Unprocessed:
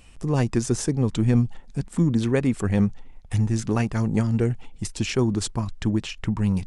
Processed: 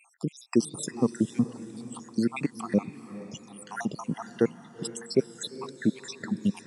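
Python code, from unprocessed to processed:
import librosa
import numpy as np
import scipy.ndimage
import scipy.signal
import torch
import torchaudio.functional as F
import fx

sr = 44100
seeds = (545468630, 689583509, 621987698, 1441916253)

y = fx.spec_dropout(x, sr, seeds[0], share_pct=75)
y = scipy.signal.sosfilt(scipy.signal.butter(4, 170.0, 'highpass', fs=sr, output='sos'), y)
y = fx.echo_diffused(y, sr, ms=455, feedback_pct=45, wet_db=-14)
y = F.gain(torch.from_numpy(y), 2.5).numpy()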